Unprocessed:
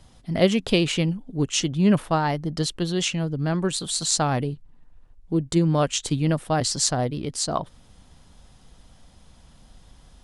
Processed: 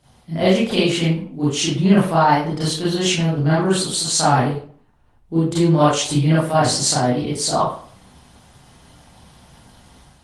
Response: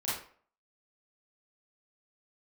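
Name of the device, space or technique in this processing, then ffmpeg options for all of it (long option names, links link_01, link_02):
far-field microphone of a smart speaker: -filter_complex "[1:a]atrim=start_sample=2205[link_01];[0:a][link_01]afir=irnorm=-1:irlink=0,highpass=frequency=120:poles=1,dynaudnorm=framelen=500:gausssize=3:maxgain=6dB" -ar 48000 -c:a libopus -b:a 24k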